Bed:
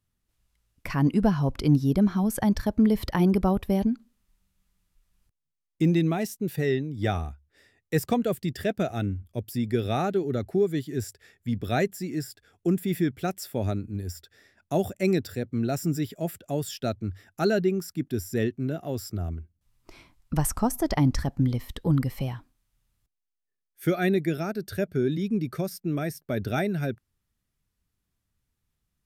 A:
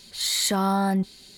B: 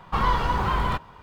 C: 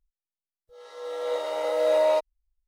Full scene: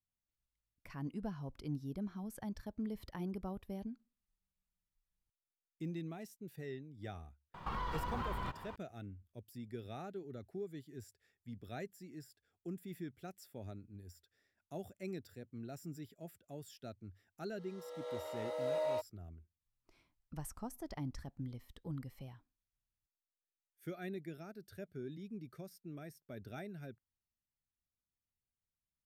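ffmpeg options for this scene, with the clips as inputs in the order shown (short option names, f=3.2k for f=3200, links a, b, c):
-filter_complex "[0:a]volume=-20dB[a];[2:a]acompressor=threshold=-33dB:ratio=6:attack=3.2:release=140:knee=1:detection=peak,atrim=end=1.22,asetpts=PTS-STARTPTS,volume=-3.5dB,afade=t=in:d=0.004:c=hsin,afade=t=out:st=1.216:d=0.004:c=hsin,adelay=332514S[b];[3:a]atrim=end=2.67,asetpts=PTS-STARTPTS,volume=-14.5dB,afade=t=in:d=0.004:c=hsin,afade=t=out:st=2.666:d=0.004:c=hsin,adelay=16810[c];[a][b][c]amix=inputs=3:normalize=0"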